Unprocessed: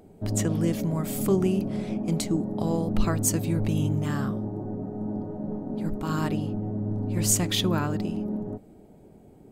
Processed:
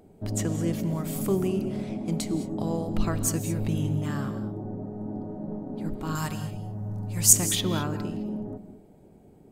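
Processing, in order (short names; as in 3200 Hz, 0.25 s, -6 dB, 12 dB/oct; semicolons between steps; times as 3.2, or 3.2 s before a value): 6.15–7.33 EQ curve 180 Hz 0 dB, 260 Hz -13 dB, 850 Hz +1 dB, 3900 Hz +3 dB, 6200 Hz +11 dB; non-linear reverb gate 0.24 s rising, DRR 11 dB; gain -2.5 dB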